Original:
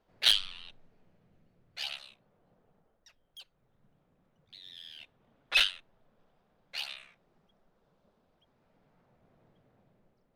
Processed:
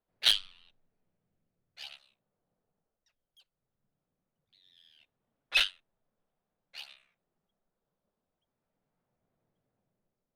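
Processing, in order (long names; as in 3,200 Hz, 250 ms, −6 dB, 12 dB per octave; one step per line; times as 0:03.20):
expander for the loud parts 1.5 to 1, over −50 dBFS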